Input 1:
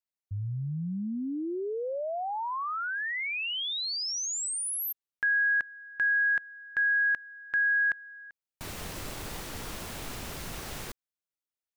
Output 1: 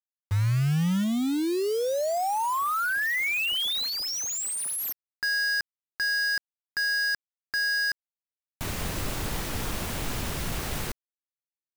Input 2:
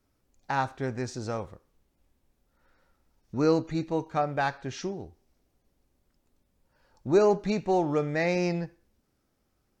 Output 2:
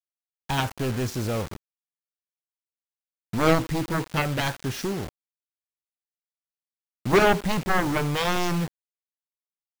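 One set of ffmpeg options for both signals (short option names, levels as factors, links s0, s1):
-af "aeval=exprs='0.282*(cos(1*acos(clip(val(0)/0.282,-1,1)))-cos(1*PI/2))+0.00251*(cos(5*acos(clip(val(0)/0.282,-1,1)))-cos(5*PI/2))+0.126*(cos(7*acos(clip(val(0)/0.282,-1,1)))-cos(7*PI/2))':c=same,bass=f=250:g=4,treble=f=4000:g=-3,acrusher=bits=5:mix=0:aa=0.000001"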